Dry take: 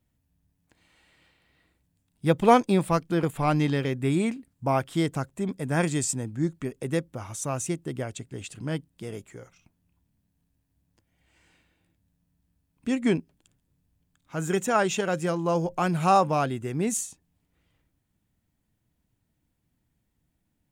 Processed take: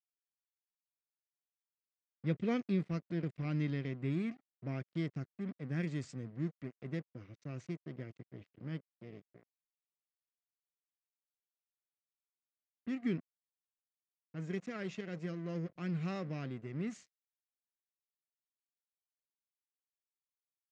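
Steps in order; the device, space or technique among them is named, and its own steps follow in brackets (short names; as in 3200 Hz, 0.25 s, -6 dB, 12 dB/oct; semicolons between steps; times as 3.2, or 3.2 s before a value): low-pass opened by the level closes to 2100 Hz, open at -23.5 dBFS; passive tone stack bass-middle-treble 10-0-1; blown loudspeaker (crossover distortion -57 dBFS; speaker cabinet 150–4900 Hz, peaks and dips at 860 Hz -9 dB, 2000 Hz +7 dB, 3500 Hz -4 dB); gain +9 dB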